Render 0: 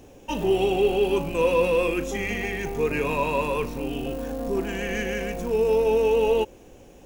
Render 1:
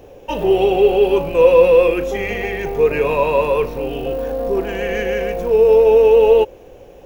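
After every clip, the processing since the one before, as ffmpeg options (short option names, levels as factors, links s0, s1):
-af "equalizer=f=250:t=o:w=1:g=-7,equalizer=f=500:t=o:w=1:g=8,equalizer=f=8000:t=o:w=1:g=-11,volume=1.78"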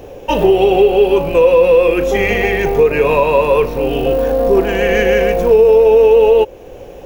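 -af "alimiter=limit=0.316:level=0:latency=1:release=381,volume=2.51"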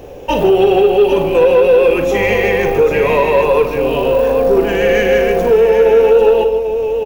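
-filter_complex "[0:a]asplit=2[s0][s1];[s1]aecho=0:1:49|153|794:0.316|0.251|0.376[s2];[s0][s2]amix=inputs=2:normalize=0,asoftclip=type=tanh:threshold=0.891"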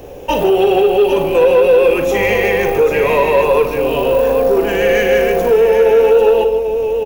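-filter_complex "[0:a]acrossover=split=340|7500[s0][s1][s2];[s0]alimiter=limit=0.119:level=0:latency=1[s3];[s2]acontrast=30[s4];[s3][s1][s4]amix=inputs=3:normalize=0"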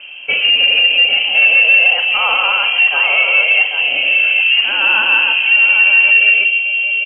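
-af "lowpass=f=2700:t=q:w=0.5098,lowpass=f=2700:t=q:w=0.6013,lowpass=f=2700:t=q:w=0.9,lowpass=f=2700:t=q:w=2.563,afreqshift=-3200,equalizer=f=82:t=o:w=0.89:g=-11.5"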